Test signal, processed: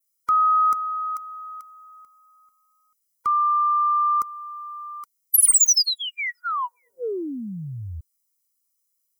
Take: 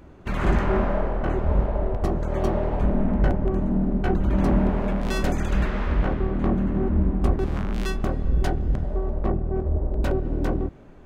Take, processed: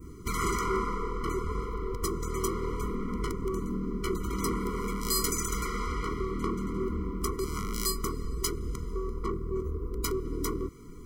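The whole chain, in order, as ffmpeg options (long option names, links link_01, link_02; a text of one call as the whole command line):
ffmpeg -i in.wav -filter_complex "[0:a]acrossover=split=460|3000[link_01][link_02][link_03];[link_01]acompressor=threshold=-34dB:ratio=8[link_04];[link_04][link_02][link_03]amix=inputs=3:normalize=0,aexciter=amount=5.4:drive=6.8:freq=4800,adynamicequalizer=threshold=0.00891:dfrequency=3500:dqfactor=0.85:tfrequency=3500:tqfactor=0.85:attack=5:release=100:ratio=0.375:range=2:mode=cutabove:tftype=bell,asoftclip=type=tanh:threshold=-13.5dB,afftfilt=real='re*eq(mod(floor(b*sr/1024/480),2),0)':imag='im*eq(mod(floor(b*sr/1024/480),2),0)':win_size=1024:overlap=0.75,volume=2.5dB" out.wav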